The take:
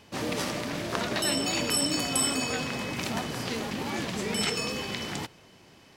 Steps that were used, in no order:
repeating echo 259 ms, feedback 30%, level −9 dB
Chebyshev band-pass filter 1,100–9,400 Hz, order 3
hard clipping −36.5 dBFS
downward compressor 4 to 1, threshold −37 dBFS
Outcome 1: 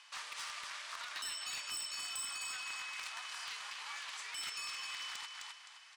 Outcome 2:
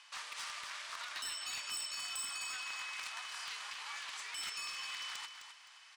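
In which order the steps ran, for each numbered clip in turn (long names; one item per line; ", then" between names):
repeating echo, then downward compressor, then Chebyshev band-pass filter, then hard clipping
downward compressor, then Chebyshev band-pass filter, then hard clipping, then repeating echo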